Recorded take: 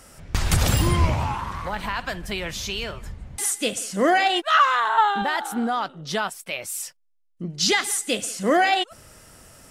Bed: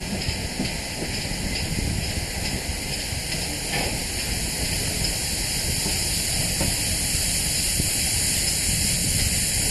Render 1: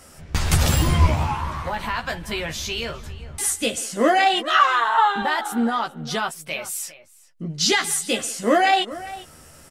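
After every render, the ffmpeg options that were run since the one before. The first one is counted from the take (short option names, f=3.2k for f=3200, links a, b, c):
-filter_complex "[0:a]asplit=2[a][b];[b]adelay=13,volume=-4dB[c];[a][c]amix=inputs=2:normalize=0,asplit=2[d][e];[e]adelay=402.3,volume=-16dB,highshelf=f=4k:g=-9.05[f];[d][f]amix=inputs=2:normalize=0"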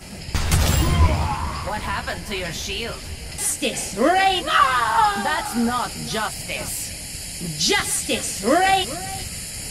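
-filter_complex "[1:a]volume=-9dB[a];[0:a][a]amix=inputs=2:normalize=0"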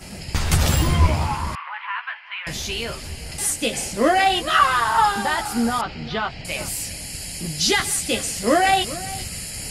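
-filter_complex "[0:a]asettb=1/sr,asplit=3[a][b][c];[a]atrim=end=1.554[d];[b]atrim=start=1.55:end=2.47,asetpts=PTS-STARTPTS,afade=t=in:d=0.004:c=qsin,afade=t=out:st=0.916:d=0.004:c=qsin,asuperpass=centerf=1700:order=8:qfactor=0.84[e];[c]atrim=start=2.466[f];[d][e]acrossfade=d=0.004:c1=hsin:c2=qsin[g];[g][f]acrossfade=d=0.004:c1=qsin:c2=hsin,asettb=1/sr,asplit=3[h][i][j];[h]atrim=end=5.814[k];[i]atrim=start=5.81:end=6.45,asetpts=PTS-STARTPTS,afade=t=in:d=0.004:c=qsin,afade=t=out:st=0.636:d=0.004:c=qsin,lowpass=f=3.8k:w=0.5412,lowpass=f=3.8k:w=1.3066[l];[j]atrim=start=6.446[m];[k][l]acrossfade=d=0.004:c1=hsin:c2=qsin[n];[n][m]acrossfade=d=0.004:c1=qsin:c2=hsin"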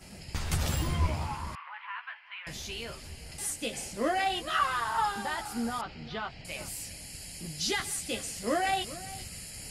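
-af "volume=-11.5dB"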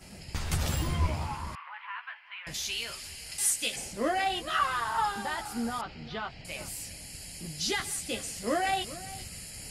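-filter_complex "[0:a]asettb=1/sr,asplit=3[a][b][c];[a]atrim=end=2.544[d];[b]atrim=start=2.54:end=3.76,asetpts=PTS-STARTPTS,afade=t=in:d=0.004:c=qsin,afade=t=out:st=1.216:d=0.004:c=qsin,tiltshelf=f=1.1k:g=-8[e];[c]atrim=start=3.756[f];[d][e]acrossfade=d=0.004:c1=hsin:c2=qsin[g];[g][f]acrossfade=d=0.004:c1=qsin:c2=hsin"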